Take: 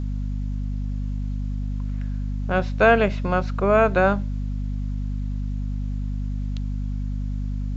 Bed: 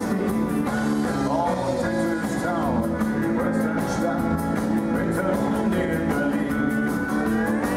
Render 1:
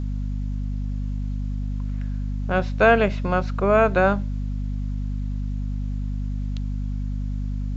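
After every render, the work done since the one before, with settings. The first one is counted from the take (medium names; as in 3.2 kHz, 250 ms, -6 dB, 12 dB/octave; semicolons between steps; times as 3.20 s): no audible change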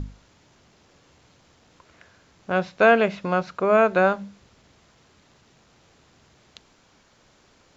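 hum notches 50/100/150/200/250 Hz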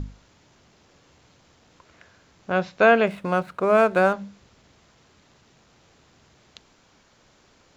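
3.07–4.13 s: median filter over 9 samples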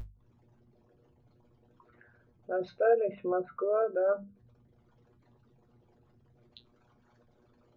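resonances exaggerated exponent 3; feedback comb 120 Hz, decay 0.15 s, harmonics all, mix 90%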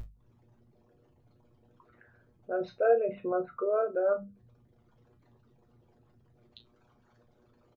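doubling 35 ms -11 dB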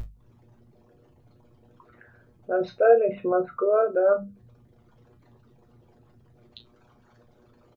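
trim +7 dB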